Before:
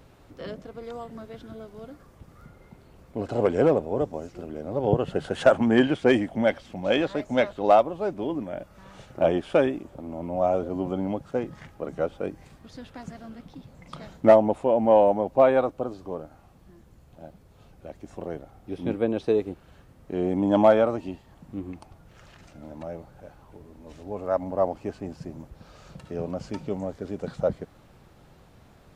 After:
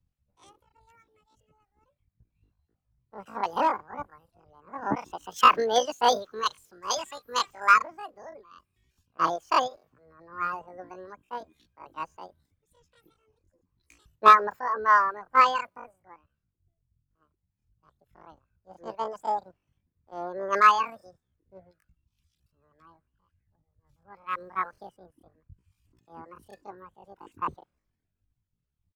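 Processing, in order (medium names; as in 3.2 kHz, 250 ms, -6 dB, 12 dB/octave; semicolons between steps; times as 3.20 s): reverb removal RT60 1.1 s; pitch shift +11.5 st; three bands expanded up and down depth 100%; trim -8.5 dB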